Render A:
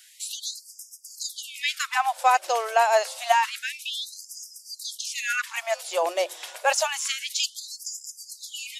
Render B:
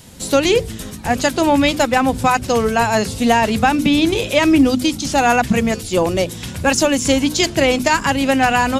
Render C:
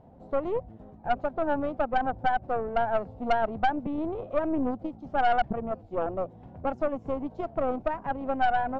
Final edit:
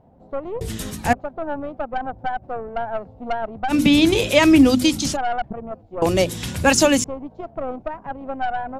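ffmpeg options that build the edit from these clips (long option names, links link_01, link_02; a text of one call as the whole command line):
ffmpeg -i take0.wav -i take1.wav -i take2.wav -filter_complex "[1:a]asplit=3[link_01][link_02][link_03];[2:a]asplit=4[link_04][link_05][link_06][link_07];[link_04]atrim=end=0.612[link_08];[link_01]atrim=start=0.608:end=1.132[link_09];[link_05]atrim=start=1.128:end=3.74[link_10];[link_02]atrim=start=3.68:end=5.17[link_11];[link_06]atrim=start=5.11:end=6.022[link_12];[link_03]atrim=start=6.018:end=7.042[link_13];[link_07]atrim=start=7.038[link_14];[link_08][link_09]acrossfade=duration=0.004:curve1=hsin:curve2=hsin[link_15];[link_15][link_10]acrossfade=duration=0.004:curve1=hsin:curve2=hsin[link_16];[link_16][link_11]acrossfade=duration=0.06:curve1=tri:curve2=tri[link_17];[link_17][link_12]acrossfade=duration=0.06:curve1=tri:curve2=tri[link_18];[link_18][link_13]acrossfade=duration=0.004:curve1=hsin:curve2=hsin[link_19];[link_19][link_14]acrossfade=duration=0.004:curve1=hsin:curve2=hsin" out.wav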